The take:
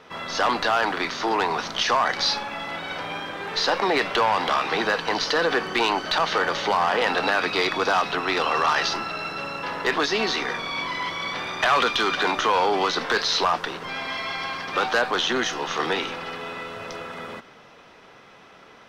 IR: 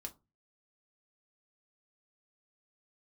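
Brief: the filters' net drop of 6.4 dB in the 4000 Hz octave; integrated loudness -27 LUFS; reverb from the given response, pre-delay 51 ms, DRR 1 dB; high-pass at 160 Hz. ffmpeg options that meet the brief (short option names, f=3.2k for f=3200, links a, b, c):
-filter_complex "[0:a]highpass=160,equalizer=f=4k:t=o:g=-8,asplit=2[a][b];[1:a]atrim=start_sample=2205,adelay=51[c];[b][c]afir=irnorm=-1:irlink=0,volume=3dB[d];[a][d]amix=inputs=2:normalize=0,volume=-5dB"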